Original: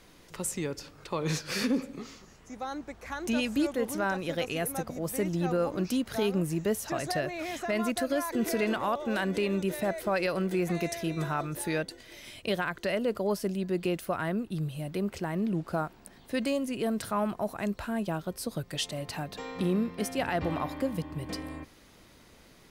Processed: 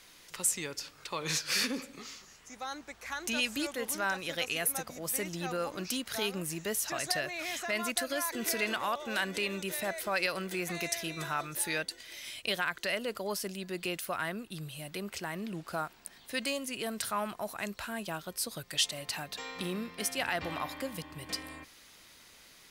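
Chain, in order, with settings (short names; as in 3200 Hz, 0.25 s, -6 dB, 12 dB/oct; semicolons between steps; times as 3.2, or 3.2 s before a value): tilt shelf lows -8 dB; gain -2.5 dB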